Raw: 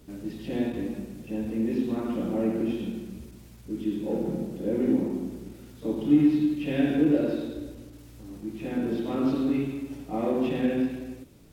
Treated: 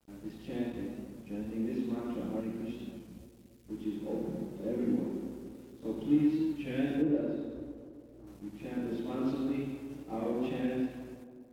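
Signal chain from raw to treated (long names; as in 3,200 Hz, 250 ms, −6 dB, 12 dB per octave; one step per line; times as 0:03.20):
0:02.40–0:03.70: parametric band 630 Hz −12 dB 1.5 octaves
dead-zone distortion −51 dBFS
0:07.02–0:08.28: high-shelf EQ 2,100 Hz −11.5 dB
tape delay 283 ms, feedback 60%, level −11 dB, low-pass 1,000 Hz
wow of a warped record 33 1/3 rpm, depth 100 cents
level −7 dB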